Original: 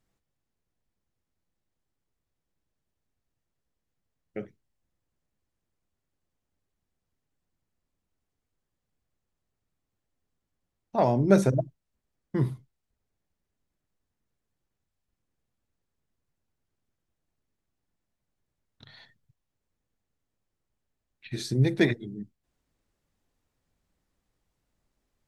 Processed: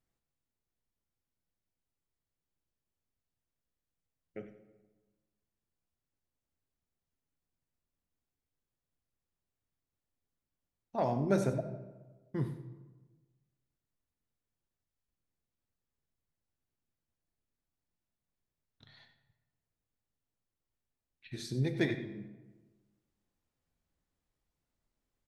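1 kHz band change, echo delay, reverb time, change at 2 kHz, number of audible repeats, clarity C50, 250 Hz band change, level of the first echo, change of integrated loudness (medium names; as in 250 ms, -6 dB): -7.5 dB, 93 ms, 1.3 s, -7.5 dB, 1, 9.5 dB, -8.5 dB, -14.0 dB, -9.0 dB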